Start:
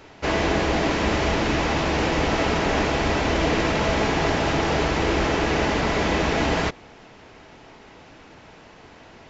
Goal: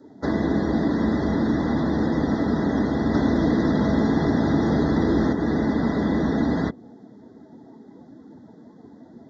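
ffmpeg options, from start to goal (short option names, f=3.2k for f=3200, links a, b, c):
-filter_complex "[0:a]highpass=73,asettb=1/sr,asplit=3[a][b][c];[a]atrim=end=3.144[d];[b]atrim=start=3.14:end=5.33,asetpts=PTS-STARTPTS,afade=t=in:d=0.004:c=qsin,afade=t=out:st=2.186:d=0.004:c=qsin,acontrast=49[e];[c]atrim=start=5.326[f];[d][e]acrossfade=d=0.004:c1=hsin:c2=qsin[g];[g][f]acrossfade=d=0.004:c1=qsin:c2=hsin,asuperstop=centerf=2600:order=20:qfactor=2.1,equalizer=f=240:w=1.7:g=11,acrossover=split=350|2600[h][i][j];[h]acompressor=threshold=-19dB:ratio=4[k];[i]acompressor=threshold=-30dB:ratio=4[l];[j]acompressor=threshold=-41dB:ratio=4[m];[k][l][m]amix=inputs=3:normalize=0,afftdn=nr=16:nf=-39"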